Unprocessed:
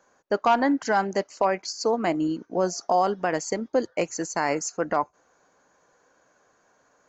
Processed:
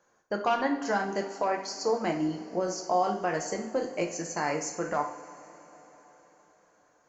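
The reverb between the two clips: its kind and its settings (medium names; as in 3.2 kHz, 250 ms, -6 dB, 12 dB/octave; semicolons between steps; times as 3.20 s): two-slope reverb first 0.51 s, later 4.5 s, from -19 dB, DRR 1.5 dB; trim -6.5 dB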